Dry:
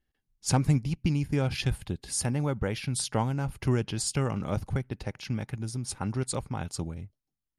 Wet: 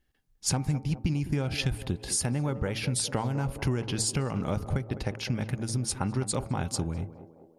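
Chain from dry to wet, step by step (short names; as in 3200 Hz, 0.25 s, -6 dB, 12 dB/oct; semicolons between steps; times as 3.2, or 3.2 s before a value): de-hum 111 Hz, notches 12; compressor 6:1, threshold -31 dBFS, peak gain reduction 12.5 dB; on a send: narrowing echo 0.206 s, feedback 65%, band-pass 480 Hz, level -10 dB; on the sum: gain +6 dB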